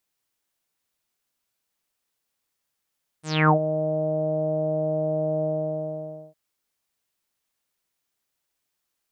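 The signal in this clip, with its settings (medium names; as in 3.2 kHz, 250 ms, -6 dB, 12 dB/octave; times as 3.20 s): synth note saw D#3 24 dB/octave, low-pass 640 Hz, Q 8.7, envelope 4 oct, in 0.32 s, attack 265 ms, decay 0.09 s, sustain -12 dB, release 0.90 s, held 2.21 s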